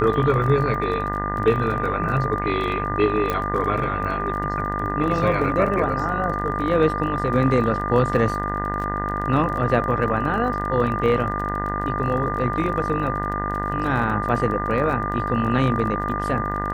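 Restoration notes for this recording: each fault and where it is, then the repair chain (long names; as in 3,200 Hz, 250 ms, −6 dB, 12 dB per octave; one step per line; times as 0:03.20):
mains buzz 50 Hz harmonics 40 −28 dBFS
surface crackle 26 per second −30 dBFS
whistle 1,200 Hz −26 dBFS
0:03.30: click −10 dBFS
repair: click removal
hum removal 50 Hz, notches 40
notch filter 1,200 Hz, Q 30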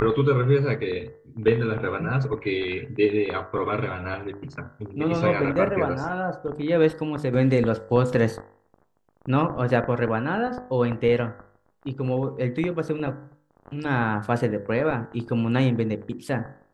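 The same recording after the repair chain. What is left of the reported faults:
none of them is left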